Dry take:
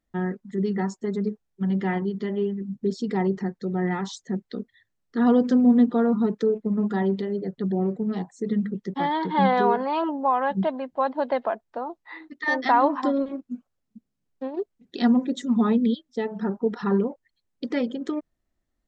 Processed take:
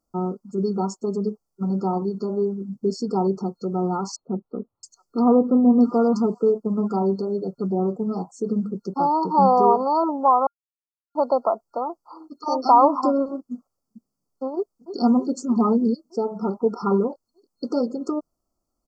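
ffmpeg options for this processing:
ffmpeg -i in.wav -filter_complex "[0:a]asettb=1/sr,asplit=3[link_01][link_02][link_03];[link_01]atrim=end=4.164[link_04];[link_02]atrim=start=4.16:end=6.56,asetpts=PTS-STARTPTS,afade=type=in:duration=0.004:curve=qsin,afade=type=out:start_time=2.396:duration=0.004:curve=qsin,acrossover=split=1600[link_05][link_06];[link_06]adelay=670[link_07];[link_05][link_07]amix=inputs=2:normalize=0,atrim=end_sample=105840[link_08];[link_03]atrim=start=6.556[link_09];[link_04][link_08]acrossfade=duration=0.004:curve1=hsin:curve2=qsin[link_10];[link_10][link_09]acrossfade=duration=0.004:curve1=qsin:curve2=hsin,asplit=2[link_11][link_12];[link_12]afade=type=in:start_time=14.55:duration=0.01,afade=type=out:start_time=14.98:duration=0.01,aecho=0:1:310|620|930|1240|1550|1860|2170|2480|2790|3100:0.334965|0.234476|0.164133|0.114893|0.0804252|0.0562976|0.0394083|0.0275858|0.0193101|0.0135171[link_13];[link_11][link_13]amix=inputs=2:normalize=0,asplit=3[link_14][link_15][link_16];[link_14]atrim=end=10.47,asetpts=PTS-STARTPTS,afade=type=out:start_time=10.466:duration=0.004:curve=hsin[link_17];[link_15]atrim=start=10.47:end=11.15,asetpts=PTS-STARTPTS,volume=0[link_18];[link_16]atrim=start=11.15,asetpts=PTS-STARTPTS,afade=type=in:duration=0.004:curve=hsin[link_19];[link_17][link_18][link_19]concat=n=3:v=0:a=1,afftfilt=real='re*(1-between(b*sr/4096,1400,4300))':imag='im*(1-between(b*sr/4096,1400,4300))':win_size=4096:overlap=0.75,lowshelf=frequency=250:gain=-9.5,volume=6dB" out.wav

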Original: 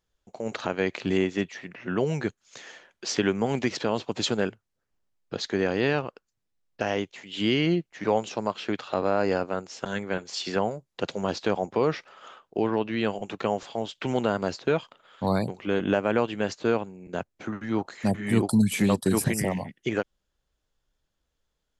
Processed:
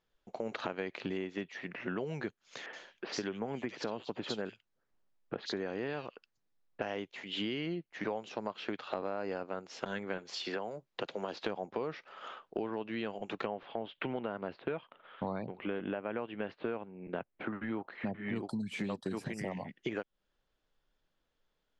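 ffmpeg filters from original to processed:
ffmpeg -i in.wav -filter_complex "[0:a]asettb=1/sr,asplit=3[link_01][link_02][link_03];[link_01]atrim=end=2.664[link_04];[link_02]atrim=start=2.66:end=6.82,asetpts=PTS-STARTPTS,afade=type=in:duration=0.004:curve=qsin,afade=type=out:start_time=4.156:duration=0.004:curve=qsin,acrossover=split=2700[link_05][link_06];[link_06]adelay=70[link_07];[link_05][link_07]amix=inputs=2:normalize=0,atrim=end_sample=183456[link_08];[link_03]atrim=start=6.816[link_09];[link_04][link_08]acrossfade=duration=0.004:curve1=hsin:curve2=qsin[link_10];[link_10][link_09]acrossfade=duration=0.004:curve1=qsin:curve2=hsin,asettb=1/sr,asplit=3[link_11][link_12][link_13];[link_11]atrim=end=10.464[link_14];[link_12]atrim=start=10.46:end=11.42,asetpts=PTS-STARTPTS,afade=type=in:duration=0.004:curve=qsin,afade=type=out:start_time=0.956:duration=0.004:curve=qsin,acrossover=split=270|4000[link_15][link_16][link_17];[link_15]acompressor=threshold=-47dB:ratio=4[link_18];[link_16]acompressor=threshold=-30dB:ratio=4[link_19];[link_17]acompressor=threshold=-50dB:ratio=4[link_20];[link_18][link_19][link_20]amix=inputs=3:normalize=0[link_21];[link_13]atrim=start=11.416[link_22];[link_14][link_21]acrossfade=duration=0.004:curve1=hsin:curve2=qsin[link_23];[link_23][link_22]acrossfade=duration=0.004:curve1=qsin:curve2=hsin,asettb=1/sr,asplit=3[link_24][link_25][link_26];[link_24]atrim=end=13.464[link_27];[link_25]atrim=start=13.46:end=18.36,asetpts=PTS-STARTPTS,afade=type=in:duration=0.004:curve=qsin,afade=type=out:start_time=4.896:duration=0.004:curve=qsin,lowpass=frequency=3200:width=0.5412,lowpass=frequency=3200:width=1.3066[link_28];[link_26]atrim=start=18.356[link_29];[link_27][link_28]acrossfade=duration=0.004:curve1=hsin:curve2=qsin[link_30];[link_30][link_29]acrossfade=duration=0.004:curve1=qsin:curve2=hsin,acompressor=threshold=-34dB:ratio=6,lowpass=4100,equalizer=frequency=61:width=0.8:gain=-11.5,volume=1dB" out.wav

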